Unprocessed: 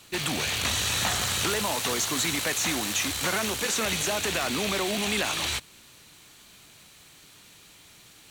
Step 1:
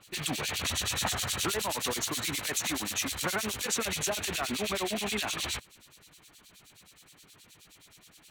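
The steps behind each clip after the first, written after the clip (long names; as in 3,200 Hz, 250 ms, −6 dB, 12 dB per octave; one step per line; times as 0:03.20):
two-band tremolo in antiphase 9.5 Hz, depth 100%, crossover 2,300 Hz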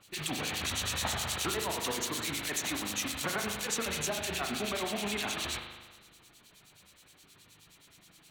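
convolution reverb RT60 1.3 s, pre-delay 39 ms, DRR 3.5 dB
level −3 dB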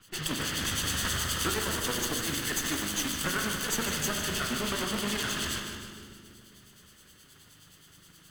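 lower of the sound and its delayed copy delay 0.63 ms
echo with a time of its own for lows and highs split 490 Hz, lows 273 ms, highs 152 ms, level −8.5 dB
level +4 dB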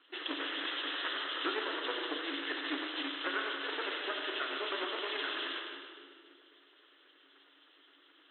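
brick-wall band-pass 260–4,100 Hz
level −3 dB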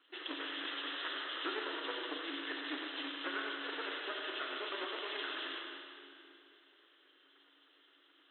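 four-comb reverb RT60 2.8 s, combs from 32 ms, DRR 8.5 dB
level −4.5 dB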